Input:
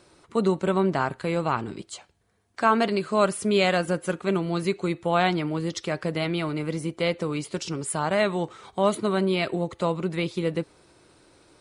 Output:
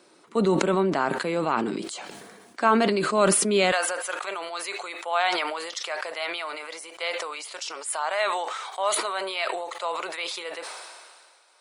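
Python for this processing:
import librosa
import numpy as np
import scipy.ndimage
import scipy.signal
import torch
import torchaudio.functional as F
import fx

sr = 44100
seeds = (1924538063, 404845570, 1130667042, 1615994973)

y = fx.highpass(x, sr, hz=fx.steps((0.0, 200.0), (3.72, 660.0)), slope=24)
y = fx.sustainer(y, sr, db_per_s=31.0)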